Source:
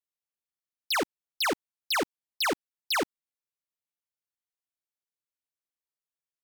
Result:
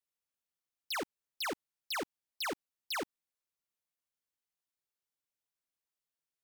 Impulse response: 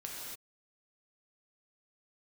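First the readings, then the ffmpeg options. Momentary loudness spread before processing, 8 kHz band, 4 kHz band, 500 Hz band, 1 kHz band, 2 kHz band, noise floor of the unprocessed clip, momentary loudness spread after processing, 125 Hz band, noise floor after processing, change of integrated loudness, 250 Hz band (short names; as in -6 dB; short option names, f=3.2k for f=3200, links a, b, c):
7 LU, -9.0 dB, -9.5 dB, -9.5 dB, -9.5 dB, -9.5 dB, under -85 dBFS, 7 LU, -9.0 dB, under -85 dBFS, -9.5 dB, -9.5 dB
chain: -af "alimiter=level_in=7.5dB:limit=-24dB:level=0:latency=1,volume=-7.5dB,asoftclip=type=tanh:threshold=-33.5dB"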